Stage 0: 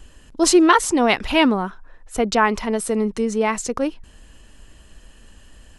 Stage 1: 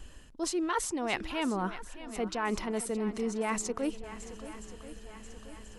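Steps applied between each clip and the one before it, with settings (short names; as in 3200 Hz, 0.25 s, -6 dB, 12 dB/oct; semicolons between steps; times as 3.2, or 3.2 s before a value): reverse; compressor 10:1, threshold -25 dBFS, peak gain reduction 16 dB; reverse; swung echo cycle 1.034 s, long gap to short 1.5:1, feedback 49%, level -14.5 dB; gain -3.5 dB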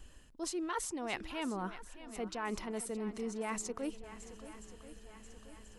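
high shelf 9600 Hz +4 dB; gain -6.5 dB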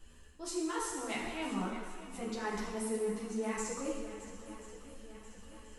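plate-style reverb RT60 1.5 s, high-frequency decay 0.95×, DRR -2 dB; ensemble effect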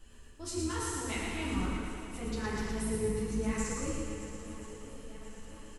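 octaver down 2 oct, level -1 dB; dynamic EQ 700 Hz, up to -6 dB, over -53 dBFS, Q 1.3; feedback echo 0.114 s, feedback 59%, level -4.5 dB; gain +1 dB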